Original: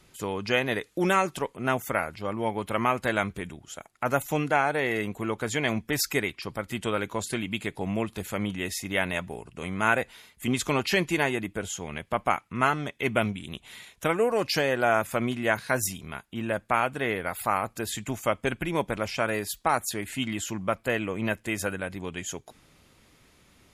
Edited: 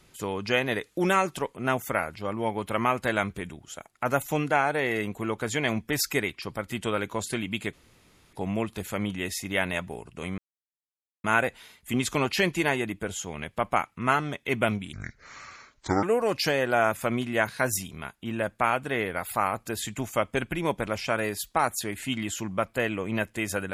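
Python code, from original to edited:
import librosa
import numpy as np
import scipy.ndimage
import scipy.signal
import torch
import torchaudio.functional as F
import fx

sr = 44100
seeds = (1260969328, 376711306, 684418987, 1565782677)

y = fx.edit(x, sr, fx.insert_room_tone(at_s=7.73, length_s=0.6),
    fx.insert_silence(at_s=9.78, length_s=0.86),
    fx.speed_span(start_s=13.47, length_s=0.66, speed=0.6), tone=tone)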